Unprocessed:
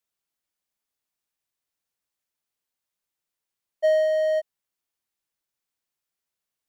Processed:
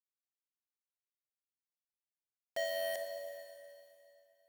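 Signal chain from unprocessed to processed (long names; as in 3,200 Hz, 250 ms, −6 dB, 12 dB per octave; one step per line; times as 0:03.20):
log-companded quantiser 2 bits
time stretch by overlap-add 0.67×, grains 22 ms
four-comb reverb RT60 2.7 s, combs from 28 ms, DRR 3.5 dB
level −7 dB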